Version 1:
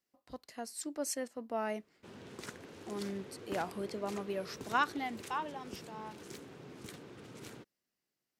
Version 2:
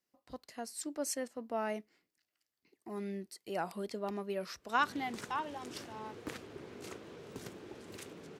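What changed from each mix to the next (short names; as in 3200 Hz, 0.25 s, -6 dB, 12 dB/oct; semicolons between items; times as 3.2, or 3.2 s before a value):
background: entry +2.75 s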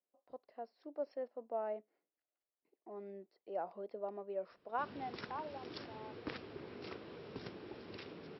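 speech: add band-pass 580 Hz, Q 1.9; master: add Chebyshev low-pass 5500 Hz, order 10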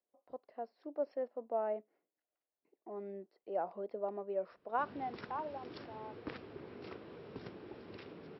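speech +4.0 dB; master: add high shelf 3700 Hz -10 dB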